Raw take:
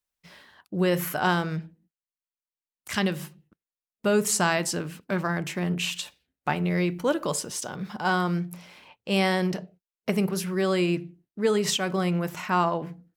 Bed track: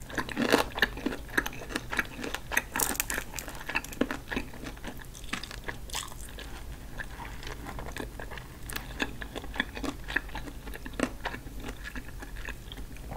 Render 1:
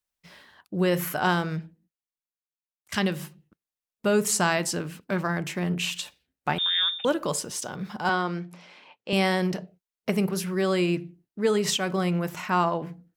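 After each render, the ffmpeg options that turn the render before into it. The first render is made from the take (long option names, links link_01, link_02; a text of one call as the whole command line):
ffmpeg -i in.wav -filter_complex "[0:a]asettb=1/sr,asplit=3[link_01][link_02][link_03];[link_01]atrim=end=6.584[link_04];[link_02]atrim=start=6.58:end=7.05,asetpts=PTS-STARTPTS,afade=type=in:duration=0.004:curve=qsin,afade=type=out:start_time=0.466:duration=0.004:curve=qsin,lowpass=frequency=3200:width_type=q:width=0.5098,lowpass=frequency=3200:width_type=q:width=0.6013,lowpass=frequency=3200:width_type=q:width=0.9,lowpass=frequency=3200:width_type=q:width=2.563,afreqshift=-3800[link_05];[link_03]atrim=start=7.046[link_06];[link_04][link_05]acrossfade=duration=0.004:curve1=hsin:curve2=qsin[link_07];[link_07][link_06]acrossfade=duration=0.004:curve1=qsin:curve2=hsin,asettb=1/sr,asplit=3[link_08][link_09][link_10];[link_08]atrim=end=8.094[link_11];[link_09]atrim=start=8.09:end=9.13,asetpts=PTS-STARTPTS,afade=type=in:duration=0.004:curve=qsin,afade=type=out:start_time=1.036:duration=0.004:curve=qsin,highpass=230,lowpass=5400[link_12];[link_10]atrim=start=9.126[link_13];[link_11][link_12]acrossfade=duration=0.004:curve1=hsin:curve2=qsin[link_14];[link_14][link_13]acrossfade=duration=0.004:curve1=qsin:curve2=hsin,asplit=2[link_15][link_16];[link_15]atrim=end=2.92,asetpts=PTS-STARTPTS,afade=type=out:start_time=1.51:duration=1.41:silence=0.0794328[link_17];[link_16]atrim=start=2.92,asetpts=PTS-STARTPTS,afade=type=in:duration=0.004:curve=hsin:silence=0.0794328[link_18];[link_17][link_18]concat=n=2:v=0:a=1" out.wav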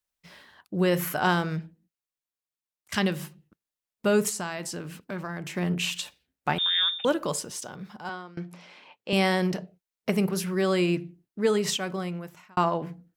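ffmpeg -i in.wav -filter_complex "[0:a]asettb=1/sr,asplit=3[link_01][link_02][link_03];[link_01]atrim=end=4.294[link_04];[link_02]atrim=start=4.29:end=5.54,asetpts=PTS-STARTPTS,afade=type=in:duration=0.004:curve=qsin,afade=type=out:start_time=1.246:duration=0.004:curve=qsin,acompressor=threshold=-36dB:ratio=2:attack=3.2:release=140:knee=1:detection=peak[link_05];[link_03]atrim=start=5.536[link_06];[link_04][link_05]acrossfade=duration=0.004:curve1=hsin:curve2=qsin[link_07];[link_07][link_06]acrossfade=duration=0.004:curve1=qsin:curve2=hsin,asplit=3[link_08][link_09][link_10];[link_08]atrim=end=8.37,asetpts=PTS-STARTPTS,afade=type=out:start_time=7.1:duration=1.27:silence=0.0891251[link_11];[link_09]atrim=start=8.37:end=12.57,asetpts=PTS-STARTPTS,afade=type=in:duration=0.004:curve=hsin:silence=0.0891251,afade=type=out:start_time=3.09:duration=1.11[link_12];[link_10]atrim=start=12.57,asetpts=PTS-STARTPTS,afade=type=in:duration=0.004:curve=hsin[link_13];[link_11][link_12][link_13]concat=n=3:v=0:a=1" out.wav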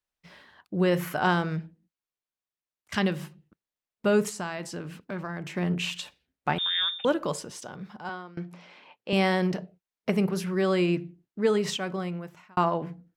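ffmpeg -i in.wav -af "lowpass=frequency=3700:poles=1" out.wav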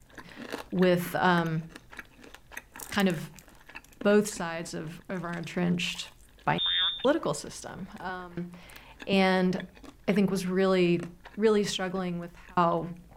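ffmpeg -i in.wav -i bed.wav -filter_complex "[1:a]volume=-14dB[link_01];[0:a][link_01]amix=inputs=2:normalize=0" out.wav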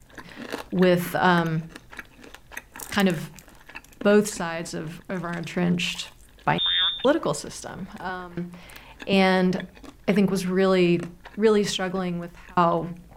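ffmpeg -i in.wav -af "volume=4.5dB" out.wav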